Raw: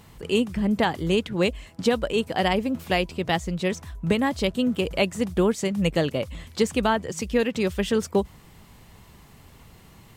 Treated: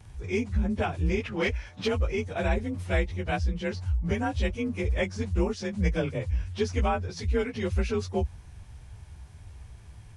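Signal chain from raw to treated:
partials spread apart or drawn together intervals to 91%
low shelf with overshoot 130 Hz +13 dB, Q 1.5
0:01.20–0:01.88: mid-hump overdrive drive 14 dB, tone 3,900 Hz, clips at −12.5 dBFS
level −3.5 dB

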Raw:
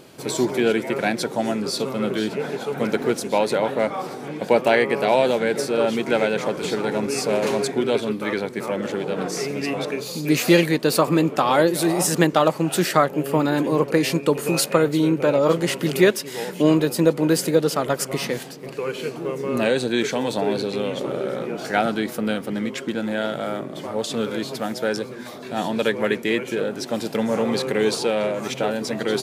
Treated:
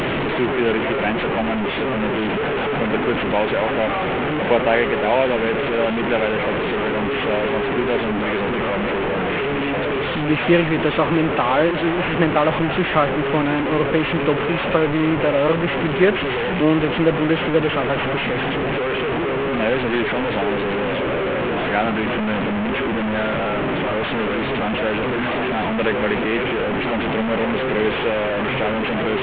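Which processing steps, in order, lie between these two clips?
linear delta modulator 16 kbit/s, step −15 dBFS

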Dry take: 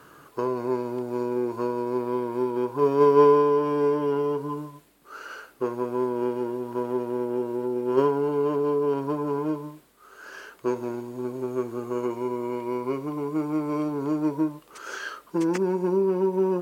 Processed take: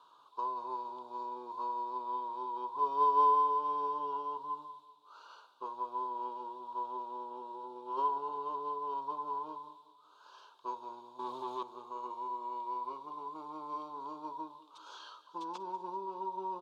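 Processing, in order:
0:11.19–0:11.63: leveller curve on the samples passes 3
pair of resonant band-passes 1,900 Hz, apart 1.9 octaves
repeating echo 192 ms, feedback 50%, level −17 dB

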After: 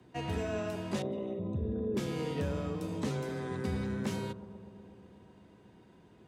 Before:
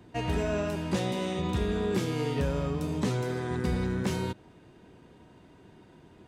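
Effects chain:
0:01.02–0:01.97: spectral envelope exaggerated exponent 2
frequency shifter +17 Hz
bucket-brigade delay 123 ms, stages 1,024, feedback 81%, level −14.5 dB
level −5.5 dB

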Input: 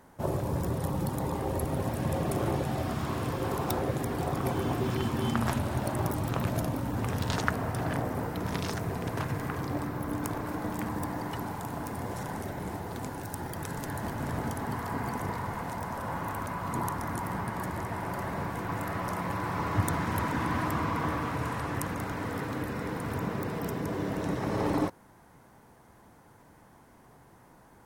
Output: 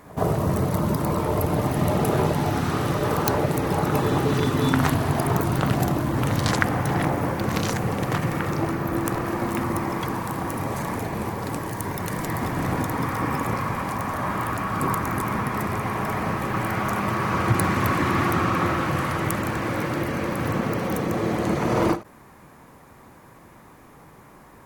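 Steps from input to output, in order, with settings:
backwards echo 128 ms −21.5 dB
change of speed 1.13×
every ending faded ahead of time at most 220 dB per second
level +8 dB

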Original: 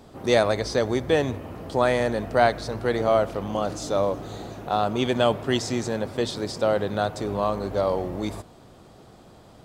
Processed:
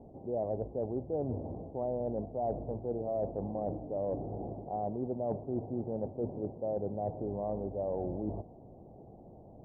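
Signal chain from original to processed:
Butterworth low-pass 820 Hz 48 dB per octave
reversed playback
downward compressor 6 to 1, threshold −29 dBFS, peak gain reduction 13.5 dB
reversed playback
level −2.5 dB

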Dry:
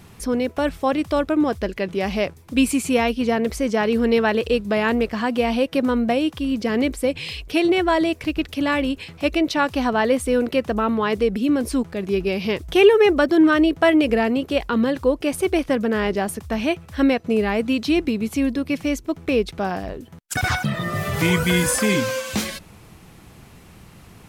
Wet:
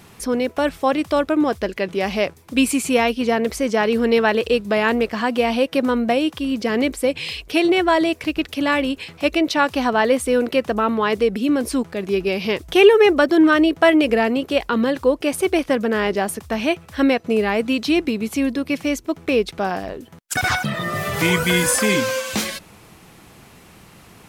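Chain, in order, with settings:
low-shelf EQ 160 Hz −10 dB
level +3 dB

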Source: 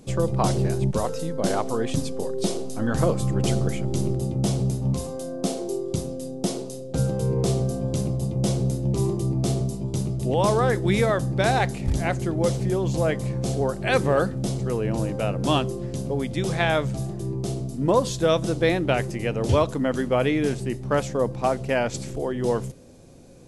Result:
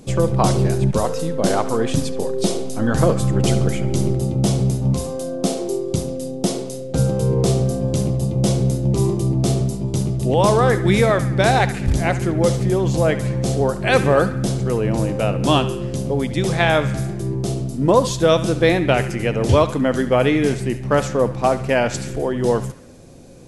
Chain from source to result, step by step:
feedback echo with a band-pass in the loop 71 ms, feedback 66%, band-pass 1,900 Hz, level −12 dB
level +5.5 dB

